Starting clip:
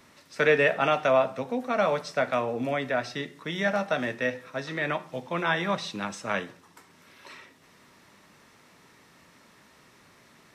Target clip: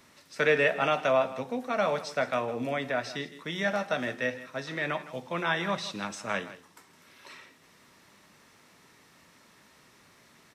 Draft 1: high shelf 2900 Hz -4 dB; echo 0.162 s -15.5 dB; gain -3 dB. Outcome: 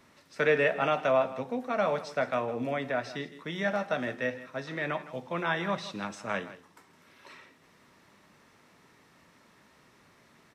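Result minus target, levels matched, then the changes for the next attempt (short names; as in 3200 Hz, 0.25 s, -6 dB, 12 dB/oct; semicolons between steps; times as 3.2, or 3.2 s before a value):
8000 Hz band -5.5 dB
change: high shelf 2900 Hz +3.5 dB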